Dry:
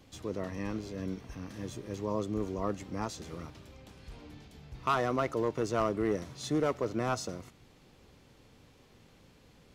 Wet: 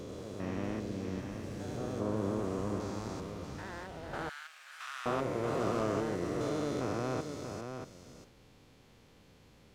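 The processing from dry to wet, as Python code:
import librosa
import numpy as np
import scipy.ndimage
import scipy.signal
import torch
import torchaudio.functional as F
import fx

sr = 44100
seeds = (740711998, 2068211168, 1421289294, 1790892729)

y = fx.spec_steps(x, sr, hold_ms=400)
y = y + 10.0 ** (-7.0 / 20.0) * np.pad(y, (int(635 * sr / 1000.0), 0))[:len(y)]
y = fx.echo_pitch(y, sr, ms=93, semitones=3, count=2, db_per_echo=-6.0)
y = fx.highpass(y, sr, hz=1500.0, slope=24, at=(4.29, 5.06))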